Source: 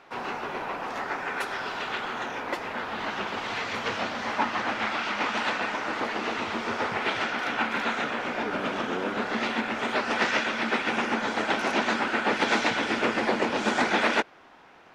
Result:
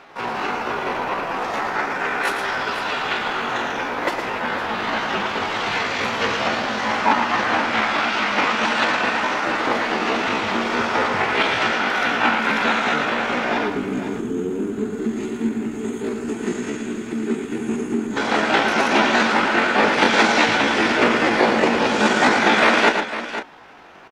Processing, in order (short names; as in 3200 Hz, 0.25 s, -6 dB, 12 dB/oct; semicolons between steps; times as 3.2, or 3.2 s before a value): spectral gain 8.49–11.27, 460–6300 Hz -19 dB; tempo 0.62×; tapped delay 0.112/0.504 s -7/-11.5 dB; gain +8 dB